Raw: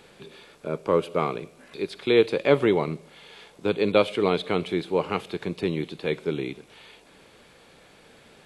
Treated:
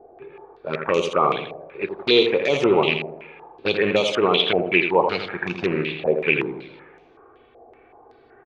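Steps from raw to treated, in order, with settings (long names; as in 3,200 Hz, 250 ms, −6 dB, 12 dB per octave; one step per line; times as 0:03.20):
loose part that buzzes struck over −27 dBFS, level −20 dBFS
low-pass that shuts in the quiet parts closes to 740 Hz, open at −17.5 dBFS
low-shelf EQ 290 Hz −11 dB
brickwall limiter −16.5 dBFS, peak gain reduction 8.5 dB
flanger swept by the level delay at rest 2.8 ms, full sweep at −24.5 dBFS
repeating echo 82 ms, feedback 47%, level −7 dB
coupled-rooms reverb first 0.24 s, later 2.2 s, from −20 dB, DRR 11 dB
low-pass on a step sequencer 5.3 Hz 680–6,100 Hz
level +8.5 dB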